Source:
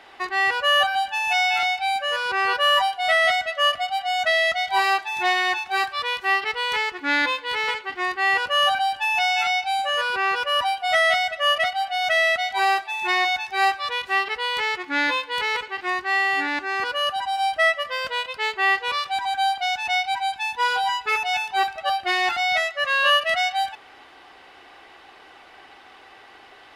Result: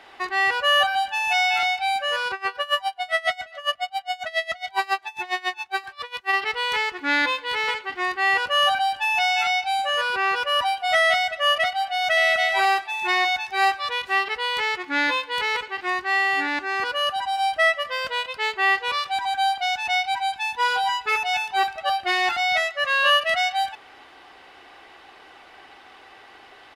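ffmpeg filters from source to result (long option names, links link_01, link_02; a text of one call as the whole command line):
ffmpeg -i in.wav -filter_complex "[0:a]asplit=3[link_01][link_02][link_03];[link_01]afade=type=out:start_time=2.28:duration=0.02[link_04];[link_02]aeval=exprs='val(0)*pow(10,-24*(0.5-0.5*cos(2*PI*7.3*n/s))/20)':channel_layout=same,afade=type=in:start_time=2.28:duration=0.02,afade=type=out:start_time=6.32:duration=0.02[link_05];[link_03]afade=type=in:start_time=6.32:duration=0.02[link_06];[link_04][link_05][link_06]amix=inputs=3:normalize=0,asplit=2[link_07][link_08];[link_08]afade=type=in:start_time=11.91:duration=0.01,afade=type=out:start_time=12.4:duration=0.01,aecho=0:1:250|500:0.501187|0.0501187[link_09];[link_07][link_09]amix=inputs=2:normalize=0" out.wav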